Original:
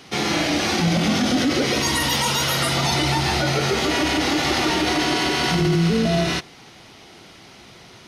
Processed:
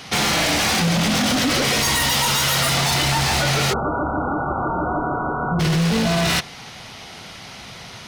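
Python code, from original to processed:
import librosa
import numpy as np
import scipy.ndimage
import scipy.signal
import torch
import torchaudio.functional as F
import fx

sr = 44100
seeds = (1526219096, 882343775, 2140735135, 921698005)

p1 = fx.peak_eq(x, sr, hz=340.0, db=-10.5, octaves=0.7)
p2 = fx.over_compress(p1, sr, threshold_db=-25.0, ratio=-1.0)
p3 = p1 + F.gain(torch.from_numpy(p2), -0.5).numpy()
p4 = 10.0 ** (-15.0 / 20.0) * (np.abs((p3 / 10.0 ** (-15.0 / 20.0) + 3.0) % 4.0 - 2.0) - 1.0)
p5 = fx.brickwall_lowpass(p4, sr, high_hz=1500.0, at=(3.72, 5.59), fade=0.02)
y = F.gain(torch.from_numpy(p5), 1.0).numpy()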